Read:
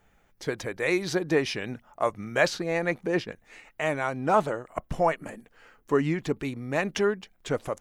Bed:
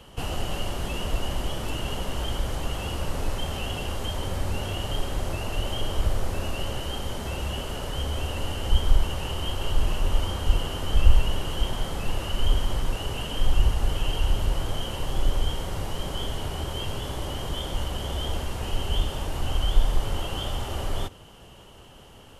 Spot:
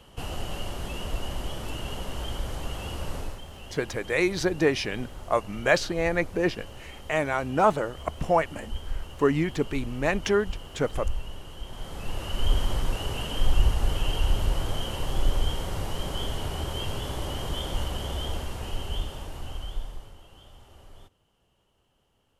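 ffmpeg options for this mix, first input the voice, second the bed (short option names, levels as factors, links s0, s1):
-filter_complex "[0:a]adelay=3300,volume=1.19[s0];[1:a]volume=2.66,afade=t=out:st=3.15:d=0.26:silence=0.354813,afade=t=in:st=11.65:d=0.96:silence=0.237137,afade=t=out:st=17.79:d=2.37:silence=0.0891251[s1];[s0][s1]amix=inputs=2:normalize=0"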